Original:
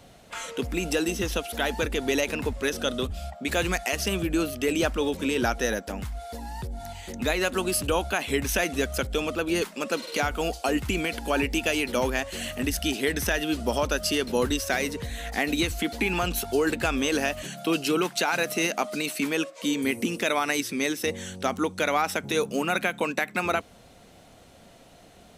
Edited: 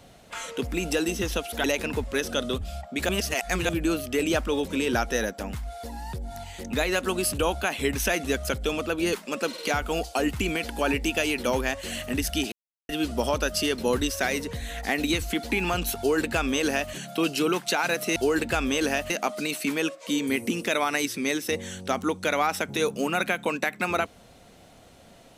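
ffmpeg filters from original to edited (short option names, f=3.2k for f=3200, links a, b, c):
-filter_complex "[0:a]asplit=8[a][b][c][d][e][f][g][h];[a]atrim=end=1.642[i];[b]atrim=start=2.128:end=3.582[j];[c]atrim=start=3.578:end=4.182,asetpts=PTS-STARTPTS,areverse[k];[d]atrim=start=4.178:end=13.01,asetpts=PTS-STARTPTS,afade=t=out:st=8.828:d=0.004:c=hsin[l];[e]atrim=start=13.01:end=13.38,asetpts=PTS-STARTPTS,volume=0[m];[f]atrim=start=13.38:end=18.652,asetpts=PTS-STARTPTS,afade=t=in:d=0.004:c=hsin[n];[g]atrim=start=16.468:end=17.412[o];[h]atrim=start=18.648[p];[i][j]acrossfade=d=0.004:c1=hsin:c2=hsin[q];[q][k]acrossfade=d=0.004:c1=hsin:c2=hsin[r];[l][m][n]concat=n=3:v=0:a=1[s];[r][s]acrossfade=d=0.004:c1=hsin:c2=hsin[t];[t][o]acrossfade=d=0.004:c1=hsin:c2=hsin[u];[u][p]acrossfade=d=0.004:c1=hsin:c2=hsin"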